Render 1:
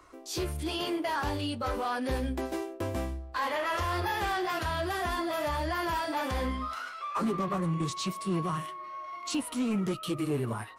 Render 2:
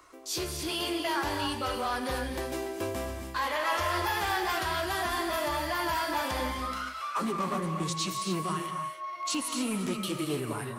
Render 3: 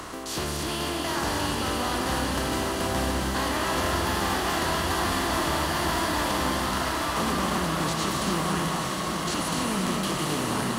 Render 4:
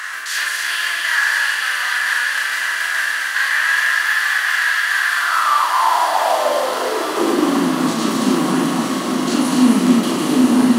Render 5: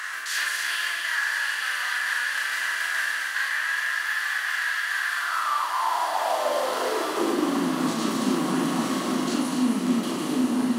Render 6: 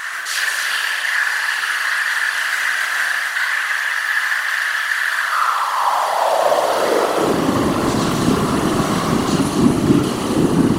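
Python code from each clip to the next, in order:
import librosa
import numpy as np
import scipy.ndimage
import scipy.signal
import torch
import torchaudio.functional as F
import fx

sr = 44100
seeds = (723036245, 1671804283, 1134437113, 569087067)

y1 = fx.tilt_eq(x, sr, slope=1.5)
y1 = fx.rev_gated(y1, sr, seeds[0], gate_ms=310, shape='rising', drr_db=4.5)
y2 = fx.bin_compress(y1, sr, power=0.4)
y2 = fx.bass_treble(y2, sr, bass_db=6, treble_db=1)
y2 = fx.echo_diffused(y2, sr, ms=910, feedback_pct=67, wet_db=-4)
y2 = y2 * librosa.db_to_amplitude(-5.5)
y3 = fx.doubler(y2, sr, ms=39.0, db=-4)
y3 = fx.rider(y3, sr, range_db=4, speed_s=2.0)
y3 = fx.filter_sweep_highpass(y3, sr, from_hz=1700.0, to_hz=250.0, start_s=5.04, end_s=7.71, q=6.3)
y3 = y3 * librosa.db_to_amplitude(3.5)
y4 = fx.rider(y3, sr, range_db=3, speed_s=0.5)
y4 = y4 * librosa.db_to_amplitude(-8.5)
y5 = y4 + 0.65 * np.pad(y4, (int(4.6 * sr / 1000.0), 0))[:len(y4)]
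y5 = fx.whisperise(y5, sr, seeds[1])
y5 = fx.echo_banded(y5, sr, ms=62, feedback_pct=76, hz=710.0, wet_db=-3.5)
y5 = y5 * librosa.db_to_amplitude(5.0)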